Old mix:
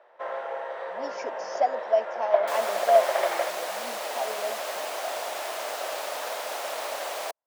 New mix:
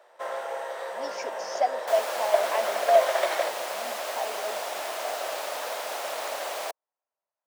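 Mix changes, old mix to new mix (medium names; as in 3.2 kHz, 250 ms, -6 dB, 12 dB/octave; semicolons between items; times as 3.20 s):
speech: add tilt EQ +2 dB/octave; first sound: remove low-pass 2.6 kHz 12 dB/octave; second sound: entry -0.60 s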